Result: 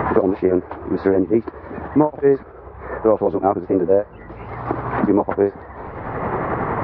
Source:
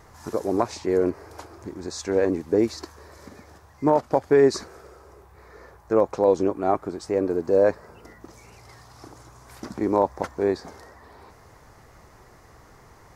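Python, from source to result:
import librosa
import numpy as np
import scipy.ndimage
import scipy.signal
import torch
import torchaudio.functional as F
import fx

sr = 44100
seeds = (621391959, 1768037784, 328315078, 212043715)

y = fx.stretch_grains(x, sr, factor=0.52, grain_ms=184.0)
y = scipy.ndimage.gaussian_filter1d(y, 3.8, mode='constant')
y = fx.band_squash(y, sr, depth_pct=100)
y = y * librosa.db_to_amplitude(8.0)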